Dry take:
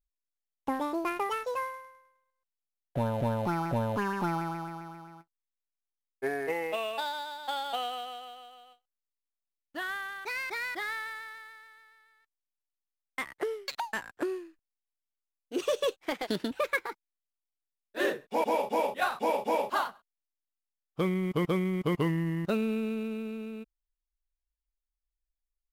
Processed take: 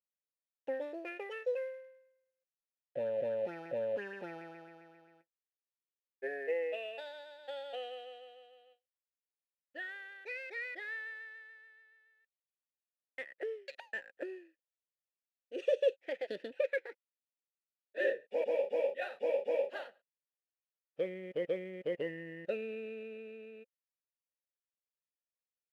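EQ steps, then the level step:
formant filter e
high-shelf EQ 6,400 Hz +4.5 dB
+3.5 dB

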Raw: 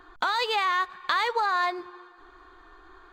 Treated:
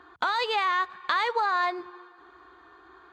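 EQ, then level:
high-pass filter 69 Hz 24 dB per octave
high-shelf EQ 7,500 Hz −11.5 dB
0.0 dB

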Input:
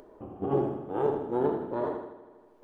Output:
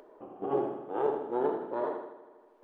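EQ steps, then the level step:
bass and treble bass −14 dB, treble −6 dB
parametric band 74 Hz −13.5 dB 0.45 octaves
mains-hum notches 50/100 Hz
0.0 dB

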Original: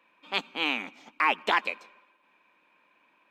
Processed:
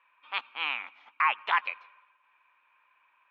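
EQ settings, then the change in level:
low-pass filter 3,000 Hz 24 dB per octave
first difference
parametric band 1,100 Hz +13.5 dB 1.4 octaves
+4.0 dB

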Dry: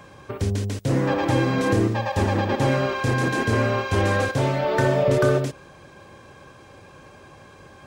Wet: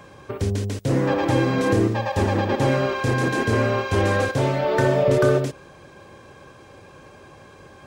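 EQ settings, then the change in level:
parametric band 420 Hz +2.5 dB 0.89 octaves
0.0 dB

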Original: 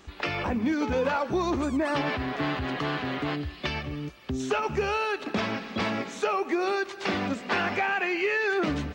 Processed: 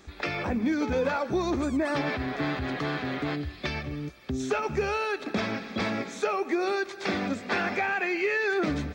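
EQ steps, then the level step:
parametric band 1,000 Hz −5 dB 0.48 octaves
mains-hum notches 50/100 Hz
notch filter 2,900 Hz, Q 7.2
0.0 dB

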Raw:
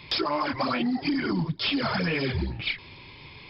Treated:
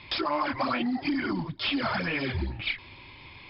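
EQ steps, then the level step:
low-pass filter 3,800 Hz 12 dB per octave
parametric band 160 Hz −7.5 dB 0.73 octaves
parametric band 440 Hz −9 dB 0.28 octaves
0.0 dB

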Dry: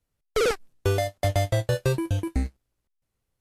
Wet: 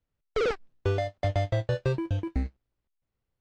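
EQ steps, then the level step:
high-frequency loss of the air 160 metres
−3.0 dB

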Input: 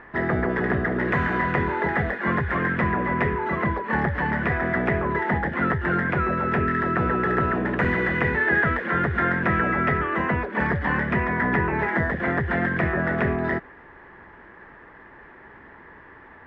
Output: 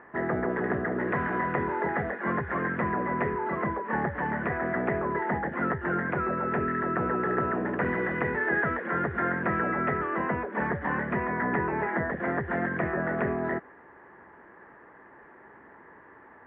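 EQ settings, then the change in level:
high-pass filter 320 Hz 6 dB per octave
low-pass filter 1,700 Hz 6 dB per octave
high-frequency loss of the air 430 metres
0.0 dB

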